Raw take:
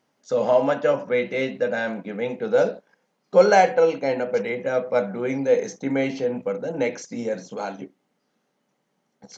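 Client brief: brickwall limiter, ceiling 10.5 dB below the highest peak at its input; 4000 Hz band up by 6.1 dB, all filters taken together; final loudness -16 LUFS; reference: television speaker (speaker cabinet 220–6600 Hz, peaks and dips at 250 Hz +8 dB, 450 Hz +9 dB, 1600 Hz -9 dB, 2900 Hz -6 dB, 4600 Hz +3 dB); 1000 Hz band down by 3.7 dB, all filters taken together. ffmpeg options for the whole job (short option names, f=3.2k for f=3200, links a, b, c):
-af "equalizer=f=1k:t=o:g=-6.5,equalizer=f=4k:t=o:g=8,alimiter=limit=-15.5dB:level=0:latency=1,highpass=f=220:w=0.5412,highpass=f=220:w=1.3066,equalizer=f=250:t=q:w=4:g=8,equalizer=f=450:t=q:w=4:g=9,equalizer=f=1.6k:t=q:w=4:g=-9,equalizer=f=2.9k:t=q:w=4:g=-6,equalizer=f=4.6k:t=q:w=4:g=3,lowpass=f=6.6k:w=0.5412,lowpass=f=6.6k:w=1.3066,volume=6.5dB"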